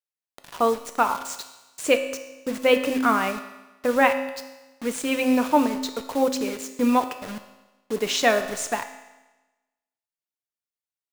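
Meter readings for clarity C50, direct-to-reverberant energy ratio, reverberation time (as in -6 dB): 10.0 dB, 7.0 dB, 1.1 s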